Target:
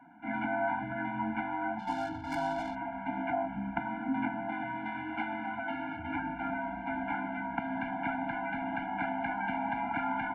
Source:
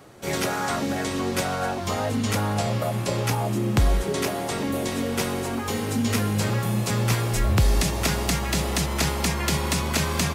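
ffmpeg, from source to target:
-filter_complex "[0:a]asettb=1/sr,asplit=3[s0][s1][s2];[s0]atrim=end=4.524[s3];[s1]atrim=start=4.52:end=5.99,asetpts=PTS-STARTPTS,afade=t=in:d=0.004:c=qsin,afade=t=out:st=1.466:d=0.004:c=qsin,aemphasis=mode=production:type=riaa[s4];[s2]atrim=start=5.986[s5];[s3][s4]acrossfade=d=0.004:c1=hsin:c2=qsin[s6];[s6][s5]acrossfade=d=0.004:c1=qsin:c2=hsin,highpass=f=240:t=q:w=0.5412,highpass=f=240:t=q:w=1.307,lowpass=f=2800:t=q:w=0.5176,lowpass=f=2800:t=q:w=0.7071,lowpass=f=2800:t=q:w=1.932,afreqshift=-150,acrossover=split=240 2000:gain=0.0708 1 0.0891[s7][s8][s9];[s7][s8][s9]amix=inputs=3:normalize=0,asplit=3[s10][s11][s12];[s10]afade=t=out:st=1.78:d=0.02[s13];[s11]adynamicsmooth=sensitivity=8:basefreq=530,afade=t=in:st=1.78:d=0.02,afade=t=out:st=2.74:d=0.02[s14];[s12]afade=t=in:st=2.74:d=0.02[s15];[s13][s14][s15]amix=inputs=3:normalize=0,afftfilt=real='re*eq(mod(floor(b*sr/1024/340),2),0)':imag='im*eq(mod(floor(b*sr/1024/340),2),0)':win_size=1024:overlap=0.75,volume=1.19"

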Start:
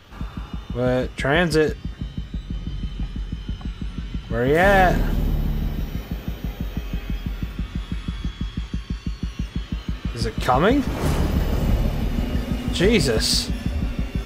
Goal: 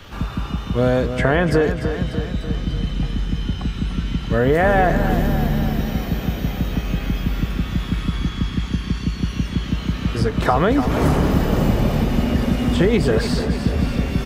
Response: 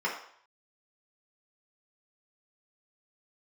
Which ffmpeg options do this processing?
-filter_complex "[0:a]acrossover=split=100|1900[s0][s1][s2];[s0]acompressor=threshold=0.0316:ratio=4[s3];[s1]acompressor=threshold=0.0794:ratio=4[s4];[s2]acompressor=threshold=0.00631:ratio=4[s5];[s3][s4][s5]amix=inputs=3:normalize=0,aecho=1:1:296|592|888|1184|1480|1776|2072:0.335|0.198|0.117|0.0688|0.0406|0.0239|0.0141,volume=2.37"

